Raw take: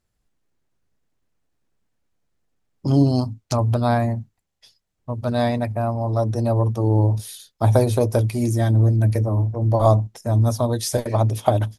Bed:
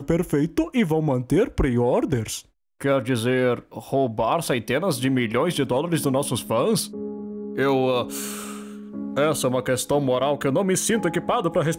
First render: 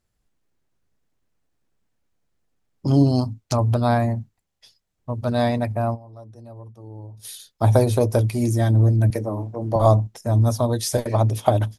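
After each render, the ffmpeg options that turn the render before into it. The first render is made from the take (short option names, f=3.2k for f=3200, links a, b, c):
-filter_complex "[0:a]asettb=1/sr,asplit=3[a][b][c];[a]atrim=end=9.104[d];[b]atrim=start=9.1:end=9.76,asetpts=PTS-STARTPTS,afade=t=in:d=0.004:c=qsin,afade=t=out:st=0.656:d=0.004:c=qsin,highpass=190[e];[c]atrim=start=9.756[f];[d][e]acrossfade=d=0.004:c1=hsin:c2=qsin[g];[g][f]acrossfade=d=0.004:c1=qsin:c2=hsin,asplit=3[h][i][j];[h]atrim=end=6.11,asetpts=PTS-STARTPTS,afade=t=out:st=5.94:d=0.17:c=exp:silence=0.0891251[k];[i]atrim=start=6.11:end=7.08,asetpts=PTS-STARTPTS,volume=-21dB[l];[j]atrim=start=7.08,asetpts=PTS-STARTPTS,afade=t=in:d=0.17:c=exp:silence=0.0891251[m];[k][l][m]concat=n=3:v=0:a=1"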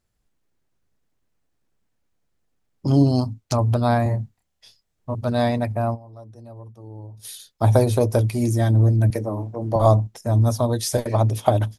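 -filter_complex "[0:a]asettb=1/sr,asplit=3[a][b][c];[a]atrim=end=4.034[d];[b]atrim=start=4.03:end=5.15,asetpts=PTS-STARTPTS,afade=t=in:d=0.004:c=qsin,afade=t=out:st=1.116:d=0.004:c=qsin,asplit=2[e][f];[f]adelay=28,volume=-3dB[g];[e][g]amix=inputs=2:normalize=0,atrim=end_sample=49392[h];[c]atrim=start=5.146[i];[d][h]acrossfade=d=0.004:c1=hsin:c2=qsin[j];[j][i]acrossfade=d=0.004:c1=qsin:c2=hsin"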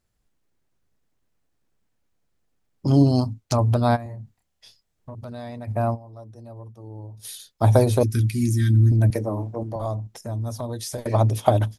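-filter_complex "[0:a]asplit=3[a][b][c];[a]afade=t=out:st=3.95:d=0.02[d];[b]acompressor=threshold=-35dB:ratio=4:attack=3.2:release=140:knee=1:detection=peak,afade=t=in:st=3.95:d=0.02,afade=t=out:st=5.67:d=0.02[e];[c]afade=t=in:st=5.67:d=0.02[f];[d][e][f]amix=inputs=3:normalize=0,asettb=1/sr,asplit=3[g][h][i];[g]atrim=end=8.034[j];[h]atrim=start=8.03:end=8.92,asetpts=PTS-STARTPTS,afade=t=in:d=0.004:c=qsin,afade=t=out:st=0.886:d=0.004:c=qsin,asuperstop=centerf=700:order=8:qfactor=0.59[k];[i]atrim=start=8.916[l];[j][k]acrossfade=d=0.004:c1=hsin:c2=qsin[m];[m][l]acrossfade=d=0.004:c1=qsin:c2=hsin,asettb=1/sr,asplit=3[n][o][p];[n]atrim=end=9.634[q];[o]atrim=start=9.63:end=11.05,asetpts=PTS-STARTPTS,afade=t=in:d=0.004:c=qsin,afade=t=out:st=1.416:d=0.004:c=qsin,acompressor=threshold=-34dB:ratio=2:attack=3.2:release=140:knee=1:detection=peak[r];[p]atrim=start=11.046[s];[q][r]acrossfade=d=0.004:c1=hsin:c2=qsin[t];[t][s]acrossfade=d=0.004:c1=qsin:c2=hsin"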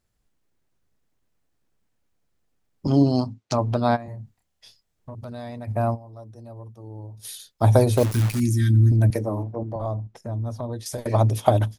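-filter_complex "[0:a]asettb=1/sr,asplit=3[a][b][c];[a]atrim=end=2.874[d];[b]atrim=start=2.87:end=4.08,asetpts=PTS-STARTPTS,afade=t=in:d=0.004:c=qsin,afade=t=out:st=1.206:d=0.004:c=qsin,highpass=150,lowpass=6.1k[e];[c]atrim=start=4.076[f];[d][e]acrossfade=d=0.004:c1=hsin:c2=qsin[g];[g][f]acrossfade=d=0.004:c1=qsin:c2=hsin,asettb=1/sr,asplit=3[h][i][j];[h]atrim=end=7.974[k];[i]atrim=start=7.97:end=8.4,asetpts=PTS-STARTPTS,afade=t=in:d=0.004:c=qsin,afade=t=out:st=0.426:d=0.004:c=qsin,acrusher=bits=6:dc=4:mix=0:aa=0.000001[l];[j]atrim=start=8.396[m];[k][l]acrossfade=d=0.004:c1=hsin:c2=qsin[n];[n][m]acrossfade=d=0.004:c1=qsin:c2=hsin,asettb=1/sr,asplit=3[o][p][q];[o]atrim=end=9.434[r];[p]atrim=start=9.43:end=10.86,asetpts=PTS-STARTPTS,afade=t=in:d=0.004:c=qsin,afade=t=out:st=1.426:d=0.004:c=qsin,lowpass=f=1.8k:p=1[s];[q]atrim=start=10.856[t];[r][s]acrossfade=d=0.004:c1=hsin:c2=qsin[u];[u][t]acrossfade=d=0.004:c1=qsin:c2=hsin"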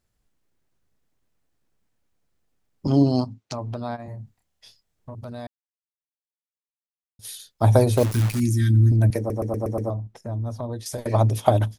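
-filter_complex "[0:a]asplit=3[a][b][c];[a]afade=t=out:st=3.24:d=0.02[d];[b]acompressor=threshold=-33dB:ratio=2:attack=3.2:release=140:knee=1:detection=peak,afade=t=in:st=3.24:d=0.02,afade=t=out:st=3.98:d=0.02[e];[c]afade=t=in:st=3.98:d=0.02[f];[d][e][f]amix=inputs=3:normalize=0,asplit=9[g][h][i][j][k][l][m][n][o];[g]atrim=end=5.47,asetpts=PTS-STARTPTS,afade=t=out:st=5.466:d=0.004:c=hsin[p];[h]atrim=start=5.47:end=7.19,asetpts=PTS-STARTPTS,volume=0[q];[i]atrim=start=7.19:end=9.302,asetpts=PTS-STARTPTS,afade=t=in:d=0.004:c=hsin[r];[j]atrim=start=9.178:end=9.302[s];[k]atrim=start=9.178:end=9.302[t];[l]atrim=start=9.178:end=9.302[u];[m]atrim=start=9.178:end=9.302[v];[n]atrim=start=9.178:end=9.302[w];[o]atrim=start=9.898[x];[p][q][r]concat=n=3:v=0:a=1[y];[y][s]acrossfade=d=0.004:c1=hsin:c2=hsin[z];[z][t]acrossfade=d=0.004:c1=hsin:c2=hsin[aa];[aa][u]acrossfade=d=0.004:c1=hsin:c2=hsin[ab];[ab][v]acrossfade=d=0.004:c1=hsin:c2=hsin[ac];[ac][w]acrossfade=d=0.004:c1=hsin:c2=hsin[ad];[ad][x]acrossfade=d=0.004:c1=hsin:c2=hsin"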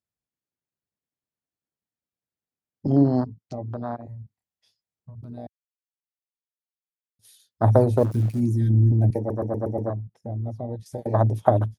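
-af "afwtdn=0.0398,highpass=89"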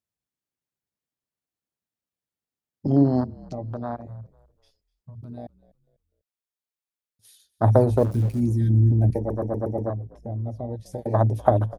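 -filter_complex "[0:a]asplit=4[a][b][c][d];[b]adelay=248,afreqshift=-52,volume=-22dB[e];[c]adelay=496,afreqshift=-104,volume=-30.9dB[f];[d]adelay=744,afreqshift=-156,volume=-39.7dB[g];[a][e][f][g]amix=inputs=4:normalize=0"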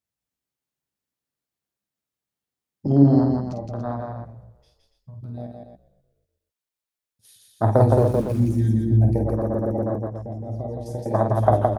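-filter_complex "[0:a]asplit=2[a][b];[b]adelay=15,volume=-13dB[c];[a][c]amix=inputs=2:normalize=0,aecho=1:1:49.56|166.2|285.7:0.501|0.708|0.355"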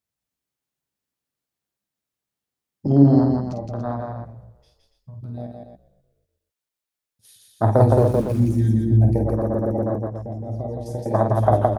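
-af "volume=1.5dB,alimiter=limit=-3dB:level=0:latency=1"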